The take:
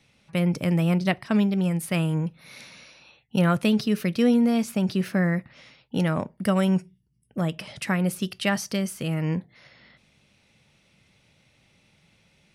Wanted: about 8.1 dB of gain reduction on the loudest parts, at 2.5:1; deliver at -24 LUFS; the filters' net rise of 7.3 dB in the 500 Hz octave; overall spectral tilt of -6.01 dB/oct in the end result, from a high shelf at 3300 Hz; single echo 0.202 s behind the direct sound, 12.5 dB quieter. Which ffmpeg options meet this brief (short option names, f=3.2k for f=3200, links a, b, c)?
-af "equalizer=f=500:t=o:g=8.5,highshelf=f=3.3k:g=3.5,acompressor=threshold=-24dB:ratio=2.5,aecho=1:1:202:0.237,volume=3dB"